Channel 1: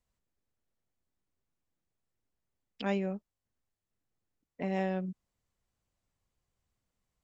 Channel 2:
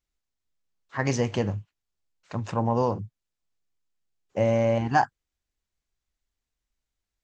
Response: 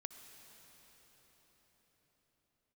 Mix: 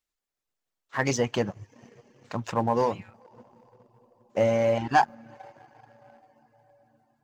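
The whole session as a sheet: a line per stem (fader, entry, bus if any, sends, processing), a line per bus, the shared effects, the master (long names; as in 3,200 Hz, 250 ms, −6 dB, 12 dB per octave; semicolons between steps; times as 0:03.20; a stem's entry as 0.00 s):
−7.0 dB, 0.00 s, no send, ceiling on every frequency bin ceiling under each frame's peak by 29 dB; downward compressor 5 to 1, threshold −39 dBFS, peak gain reduction 11.5 dB; brickwall limiter −33 dBFS, peak gain reduction 10 dB
−2.5 dB, 0.00 s, send −5.5 dB, mains-hum notches 50/100/150 Hz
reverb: on, RT60 5.5 s, pre-delay 56 ms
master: reverb reduction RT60 0.62 s; leveller curve on the samples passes 1; low-shelf EQ 220 Hz −8 dB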